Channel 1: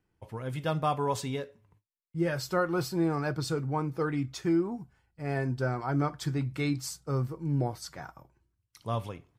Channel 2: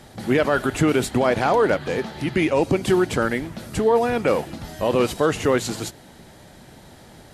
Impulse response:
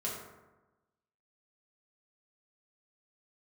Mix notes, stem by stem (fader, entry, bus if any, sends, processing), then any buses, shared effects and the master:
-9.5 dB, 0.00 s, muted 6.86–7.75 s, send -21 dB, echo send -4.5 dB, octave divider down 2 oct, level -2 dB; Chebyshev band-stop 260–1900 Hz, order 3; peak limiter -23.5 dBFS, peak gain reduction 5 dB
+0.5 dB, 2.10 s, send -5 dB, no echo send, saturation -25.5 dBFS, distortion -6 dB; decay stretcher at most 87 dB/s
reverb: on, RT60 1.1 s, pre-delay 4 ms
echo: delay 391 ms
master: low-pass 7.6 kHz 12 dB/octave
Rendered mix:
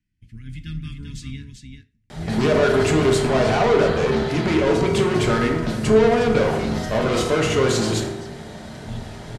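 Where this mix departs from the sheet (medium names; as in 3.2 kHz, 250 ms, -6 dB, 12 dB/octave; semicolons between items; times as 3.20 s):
stem 1 -9.5 dB -> -1.0 dB; reverb return +8.0 dB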